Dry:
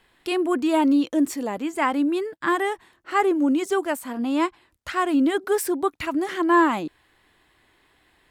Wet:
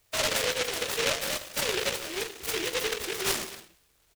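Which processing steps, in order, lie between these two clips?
pitch bend over the whole clip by +10.5 st ending unshifted; comb 1.7 ms, depth 48%; peak limiter -17 dBFS, peak gain reduction 10 dB; tremolo saw up 1.2 Hz, depth 30%; time stretch by phase-locked vocoder 0.5×; peaking EQ 270 Hz -6 dB 0.88 oct; feedback echo behind a high-pass 230 ms, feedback 59%, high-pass 3.6 kHz, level -21 dB; gated-style reverb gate 330 ms falling, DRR 4.5 dB; delay time shaken by noise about 2.5 kHz, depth 0.32 ms; trim -2.5 dB

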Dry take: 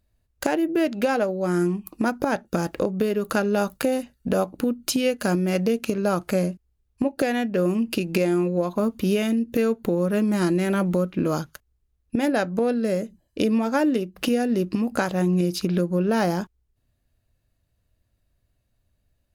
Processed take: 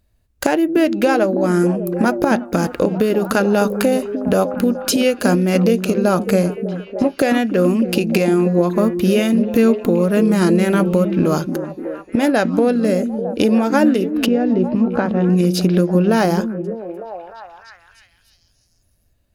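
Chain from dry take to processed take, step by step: 14.26–15.30 s: tape spacing loss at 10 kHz 35 dB; repeats whose band climbs or falls 301 ms, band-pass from 240 Hz, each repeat 0.7 oct, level -5 dB; trim +6.5 dB

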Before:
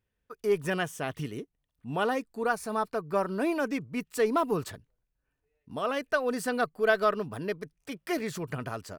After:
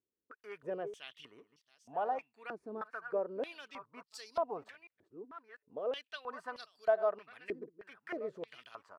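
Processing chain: chunks repeated in reverse 696 ms, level -14 dB; step-sequenced band-pass 3.2 Hz 340–4800 Hz

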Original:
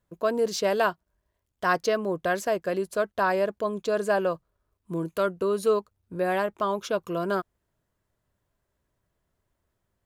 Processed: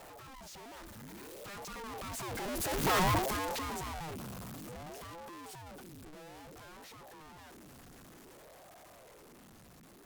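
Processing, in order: one-bit comparator; Doppler pass-by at 3.01 s, 36 m/s, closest 12 m; in parallel at -8.5 dB: bit crusher 5-bit; on the sum: ring modulator with a swept carrier 420 Hz, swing 65%, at 0.57 Hz

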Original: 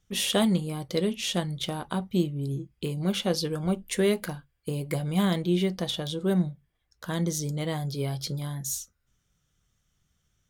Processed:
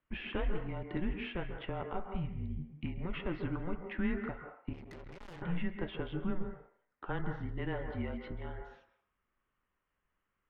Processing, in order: dynamic bell 480 Hz, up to -3 dB, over -34 dBFS, Q 1.1; peak limiter -21.5 dBFS, peak gain reduction 7.5 dB; mistuned SSB -180 Hz 180–2600 Hz; on a send at -5.5 dB: reverberation RT60 0.60 s, pre-delay 132 ms; 4.73–5.42 s: on the sum: valve stage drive 44 dB, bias 0.6; trim -2.5 dB

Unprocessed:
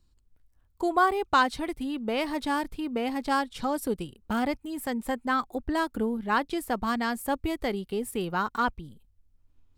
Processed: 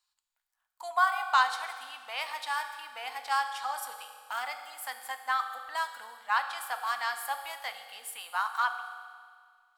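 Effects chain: inverse Chebyshev high-pass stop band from 410 Hz, stop band 40 dB; on a send: reverberation RT60 1.9 s, pre-delay 3 ms, DRR 6 dB; on the sum: trim -1 dB

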